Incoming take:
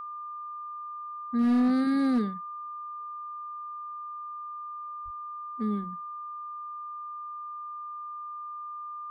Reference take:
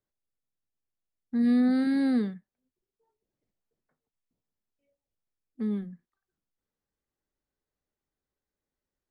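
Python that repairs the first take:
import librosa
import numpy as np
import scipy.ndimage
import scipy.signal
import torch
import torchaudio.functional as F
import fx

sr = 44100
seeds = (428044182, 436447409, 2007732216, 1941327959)

y = fx.fix_declip(x, sr, threshold_db=-19.5)
y = fx.notch(y, sr, hz=1200.0, q=30.0)
y = fx.fix_deplosive(y, sr, at_s=(5.04,))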